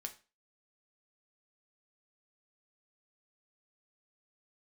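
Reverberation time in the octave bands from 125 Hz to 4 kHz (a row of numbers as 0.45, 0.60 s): 0.30, 0.35, 0.35, 0.30, 0.30, 0.30 s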